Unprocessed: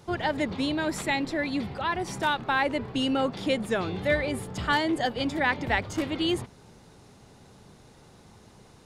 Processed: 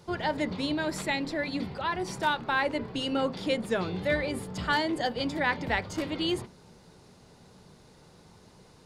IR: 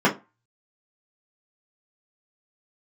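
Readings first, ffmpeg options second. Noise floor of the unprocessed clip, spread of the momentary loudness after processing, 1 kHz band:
−54 dBFS, 5 LU, −2.0 dB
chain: -filter_complex "[0:a]equalizer=frequency=4600:width_type=o:width=0.34:gain=5,asplit=2[link_01][link_02];[1:a]atrim=start_sample=2205,asetrate=41454,aresample=44100[link_03];[link_02][link_03]afir=irnorm=-1:irlink=0,volume=-30.5dB[link_04];[link_01][link_04]amix=inputs=2:normalize=0,volume=-3dB"

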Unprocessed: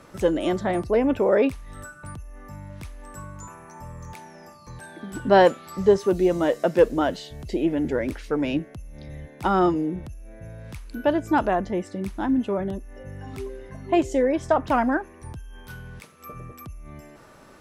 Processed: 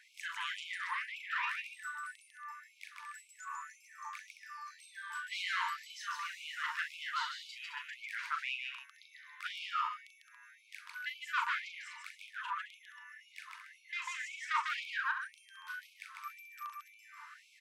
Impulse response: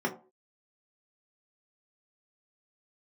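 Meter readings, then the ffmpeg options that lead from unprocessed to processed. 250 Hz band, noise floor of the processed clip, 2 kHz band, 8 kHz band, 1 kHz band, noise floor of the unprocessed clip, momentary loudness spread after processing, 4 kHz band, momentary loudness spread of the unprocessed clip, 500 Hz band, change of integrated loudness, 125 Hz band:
below −40 dB, −64 dBFS, −3.0 dB, can't be measured, −12.5 dB, −49 dBFS, 16 LU, −2.5 dB, 21 LU, below −40 dB, −17.0 dB, below −40 dB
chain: -filter_complex "[0:a]lowshelf=frequency=480:width_type=q:width=3:gain=-9.5,asplit=2[link_01][link_02];[link_02]highpass=frequency=720:poles=1,volume=16dB,asoftclip=type=tanh:threshold=-6dB[link_03];[link_01][link_03]amix=inputs=2:normalize=0,lowpass=frequency=1500:poles=1,volume=-6dB,aecho=1:1:37.9|148.7|215.7|279.9:0.562|0.708|0.316|0.251,afftfilt=real='re*gte(b*sr/1024,890*pow(2200/890,0.5+0.5*sin(2*PI*1.9*pts/sr)))':imag='im*gte(b*sr/1024,890*pow(2200/890,0.5+0.5*sin(2*PI*1.9*pts/sr)))':win_size=1024:overlap=0.75,volume=-8dB"

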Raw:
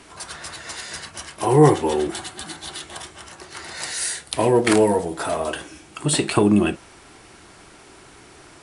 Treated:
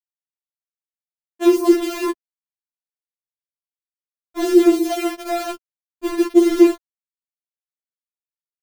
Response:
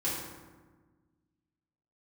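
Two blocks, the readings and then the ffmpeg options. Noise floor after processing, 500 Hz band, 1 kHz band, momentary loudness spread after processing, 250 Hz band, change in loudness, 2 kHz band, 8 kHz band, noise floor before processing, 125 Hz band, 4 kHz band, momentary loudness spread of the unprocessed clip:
below −85 dBFS, +0.5 dB, −5.0 dB, 17 LU, +5.0 dB, +3.5 dB, −4.5 dB, −9.0 dB, −47 dBFS, below −35 dB, −5.0 dB, 20 LU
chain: -af "lowpass=frequency=460:width_type=q:width=4.9,aeval=exprs='val(0)*gte(abs(val(0)),0.1)':channel_layout=same,afftfilt=real='re*4*eq(mod(b,16),0)':imag='im*4*eq(mod(b,16),0)':win_size=2048:overlap=0.75,volume=2dB"

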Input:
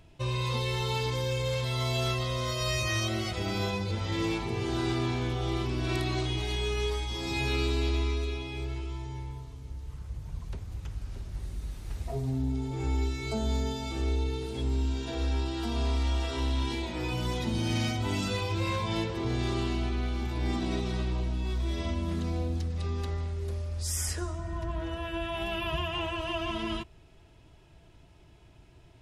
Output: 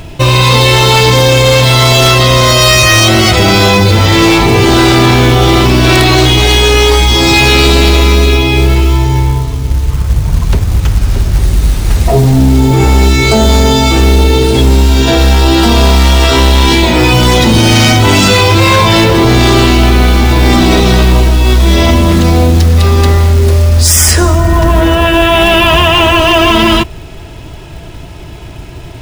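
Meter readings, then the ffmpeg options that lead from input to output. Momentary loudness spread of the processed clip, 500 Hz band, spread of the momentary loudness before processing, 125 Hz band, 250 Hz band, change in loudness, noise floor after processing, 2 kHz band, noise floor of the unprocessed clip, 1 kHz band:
6 LU, +25.0 dB, 10 LU, +23.5 dB, +24.0 dB, +24.5 dB, −26 dBFS, +26.5 dB, −55 dBFS, +26.5 dB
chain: -af "acrusher=bits=6:mode=log:mix=0:aa=0.000001,apsyclip=31dB,volume=-2dB"

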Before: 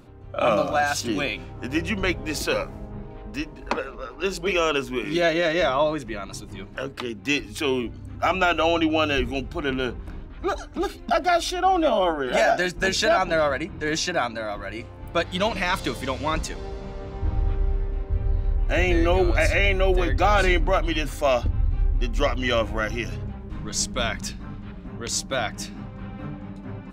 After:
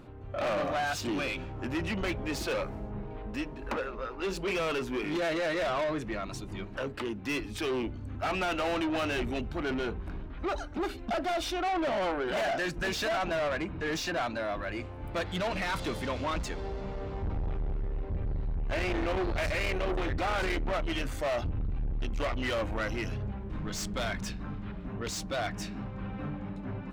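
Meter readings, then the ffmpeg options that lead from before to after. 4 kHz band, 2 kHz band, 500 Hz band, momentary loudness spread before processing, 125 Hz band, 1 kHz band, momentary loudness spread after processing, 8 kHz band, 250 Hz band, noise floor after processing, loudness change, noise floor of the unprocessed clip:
−9.0 dB, −8.5 dB, −8.5 dB, 15 LU, −7.0 dB, −9.0 dB, 8 LU, −10.5 dB, −6.5 dB, −41 dBFS, −9.0 dB, −40 dBFS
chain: -af "asoftclip=type=tanh:threshold=-27.5dB,bass=frequency=250:gain=-1,treble=frequency=4000:gain=-7"

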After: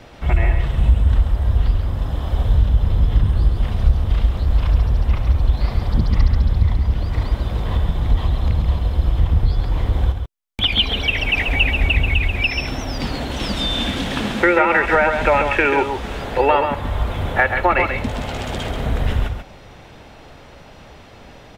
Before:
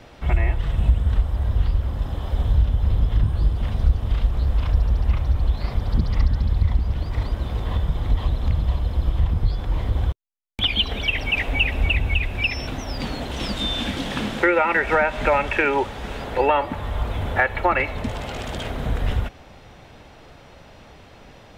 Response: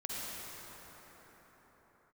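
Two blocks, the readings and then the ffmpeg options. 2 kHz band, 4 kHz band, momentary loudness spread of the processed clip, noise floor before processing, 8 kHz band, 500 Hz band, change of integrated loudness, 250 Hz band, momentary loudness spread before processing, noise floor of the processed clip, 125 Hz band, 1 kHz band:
+4.0 dB, +4.0 dB, 8 LU, −47 dBFS, can't be measured, +4.0 dB, +4.0 dB, +4.0 dB, 9 LU, −42 dBFS, +3.5 dB, +4.0 dB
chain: -af "aecho=1:1:136:0.473,volume=3dB"

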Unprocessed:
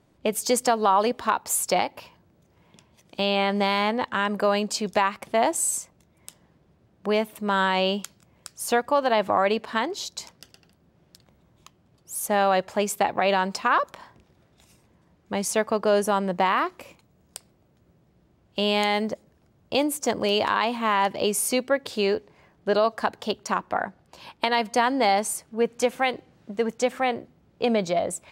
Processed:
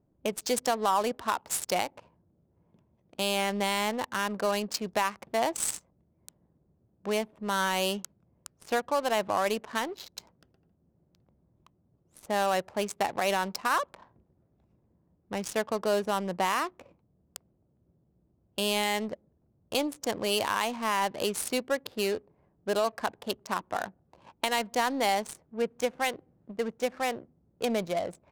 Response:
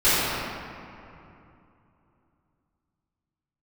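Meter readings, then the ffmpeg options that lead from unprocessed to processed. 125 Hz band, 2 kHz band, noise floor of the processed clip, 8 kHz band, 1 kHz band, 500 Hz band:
−6.5 dB, −5.0 dB, −71 dBFS, −6.0 dB, −6.0 dB, −6.0 dB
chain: -af "adynamicsmooth=sensitivity=5.5:basefreq=630,aemphasis=mode=production:type=cd,volume=-6dB"

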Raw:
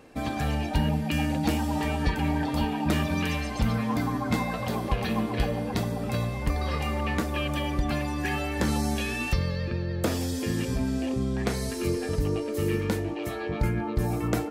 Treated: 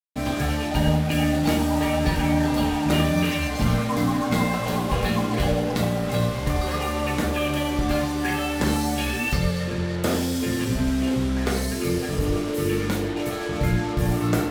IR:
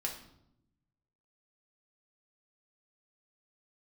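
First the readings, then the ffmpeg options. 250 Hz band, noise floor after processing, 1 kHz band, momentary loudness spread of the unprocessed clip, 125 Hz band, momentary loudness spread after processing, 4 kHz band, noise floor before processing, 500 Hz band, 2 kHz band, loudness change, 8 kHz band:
+5.0 dB, −27 dBFS, +4.5 dB, 3 LU, +3.5 dB, 4 LU, +6.0 dB, −32 dBFS, +5.0 dB, +4.5 dB, +4.5 dB, +6.0 dB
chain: -filter_complex "[0:a]acrusher=bits=5:mix=0:aa=0.5[link_01];[1:a]atrim=start_sample=2205,afade=type=out:start_time=0.16:duration=0.01,atrim=end_sample=7497,asetrate=33516,aresample=44100[link_02];[link_01][link_02]afir=irnorm=-1:irlink=0,volume=1.5dB"

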